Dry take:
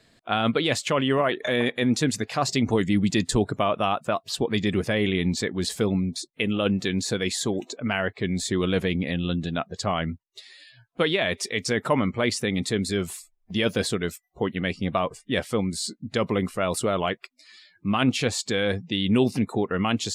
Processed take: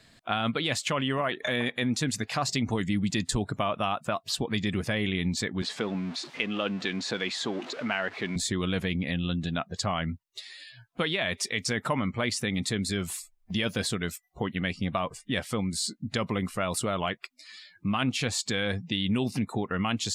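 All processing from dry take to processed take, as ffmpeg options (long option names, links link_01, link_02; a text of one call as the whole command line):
ffmpeg -i in.wav -filter_complex "[0:a]asettb=1/sr,asplit=3[link_01][link_02][link_03];[link_01]atrim=end=5.624[link_04];[link_02]atrim=start=5.62:end=8.36,asetpts=PTS-STARTPTS,afade=type=in:duration=0.004:curve=qsin,afade=type=out:start_time=2.736:duration=0.004:curve=qsin,aeval=exprs='val(0)+0.5*0.0178*sgn(val(0))':channel_layout=same,highpass=270,lowpass=3600[link_05];[link_03]atrim=start=8.356[link_06];[link_04][link_05]acrossfade=duration=0.004:curve1=hsin:curve2=qsin[link_07];[link_07][link_06]acrossfade=duration=0.004:curve1=qsin:curve2=hsin,equalizer=frequency=420:width=1.2:gain=-6.5,acompressor=threshold=-32dB:ratio=2,volume=3dB" out.wav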